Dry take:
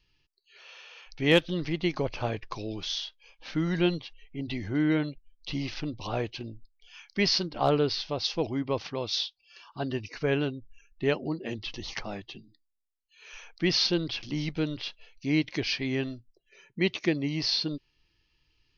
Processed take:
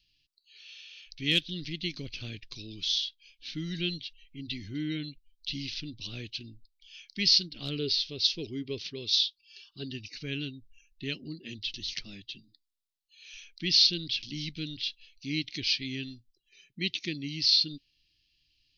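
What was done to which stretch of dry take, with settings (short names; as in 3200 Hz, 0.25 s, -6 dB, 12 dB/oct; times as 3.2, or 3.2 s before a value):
7.78–9.84 bell 410 Hz +13 dB 0.3 oct
whole clip: EQ curve 280 Hz 0 dB, 860 Hz -26 dB, 2400 Hz +4 dB, 3900 Hz +13 dB, 6700 Hz +6 dB; gain -6.5 dB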